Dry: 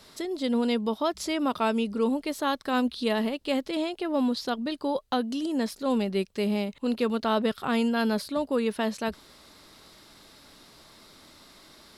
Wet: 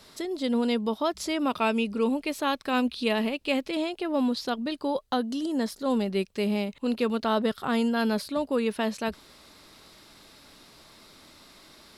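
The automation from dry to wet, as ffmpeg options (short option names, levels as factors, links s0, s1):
-af "asetnsamples=n=441:p=0,asendcmd='1.45 equalizer g 9;3.72 equalizer g 2.5;5.06 equalizer g -6;6.06 equalizer g 2.5;7.27 equalizer g -4.5;8.02 equalizer g 3',equalizer=f=2500:t=o:w=0.28:g=0.5"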